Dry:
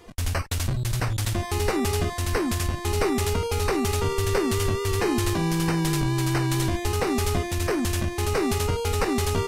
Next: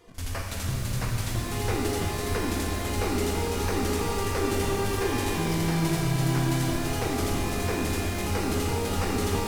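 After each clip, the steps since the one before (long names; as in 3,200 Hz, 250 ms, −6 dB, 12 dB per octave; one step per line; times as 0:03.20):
backwards echo 38 ms −18 dB
reverb with rising layers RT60 3.9 s, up +12 semitones, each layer −8 dB, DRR −2.5 dB
level −7.5 dB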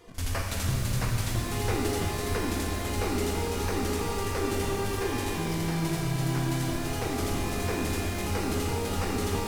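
speech leveller within 5 dB 2 s
level −2 dB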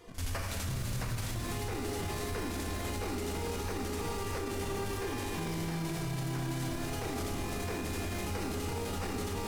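brickwall limiter −26 dBFS, peak gain reduction 10.5 dB
level −1 dB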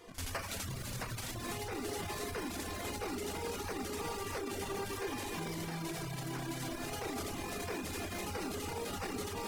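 low-shelf EQ 160 Hz −9 dB
reverb reduction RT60 0.89 s
level +1 dB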